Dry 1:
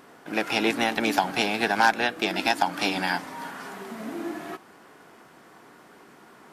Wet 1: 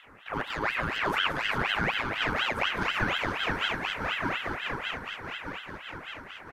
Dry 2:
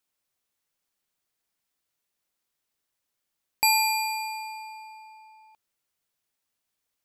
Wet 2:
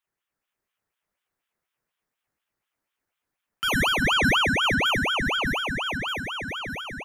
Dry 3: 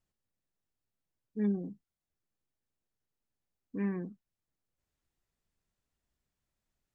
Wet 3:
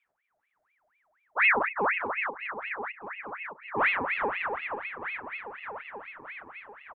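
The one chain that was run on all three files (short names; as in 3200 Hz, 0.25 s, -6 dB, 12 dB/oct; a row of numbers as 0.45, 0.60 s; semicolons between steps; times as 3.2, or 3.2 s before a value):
regenerating reverse delay 0.307 s, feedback 82%, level -8.5 dB; limiter -16 dBFS; resonant high shelf 1500 Hz -12 dB, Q 1.5; on a send: feedback echo 0.394 s, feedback 22%, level -4.5 dB; on the sum: ring modulator with a swept carrier 1500 Hz, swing 60%, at 4.1 Hz; normalise peaks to -12 dBFS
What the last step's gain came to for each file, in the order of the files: +0.5, +6.0, +10.0 dB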